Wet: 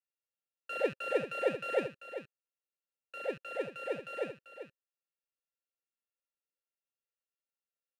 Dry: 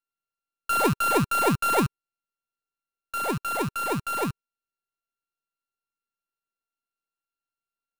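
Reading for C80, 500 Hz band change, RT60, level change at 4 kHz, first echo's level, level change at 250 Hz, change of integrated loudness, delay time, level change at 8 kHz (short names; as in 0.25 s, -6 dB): none, -3.5 dB, none, -12.0 dB, -10.5 dB, -16.0 dB, -11.0 dB, 0.391 s, under -25 dB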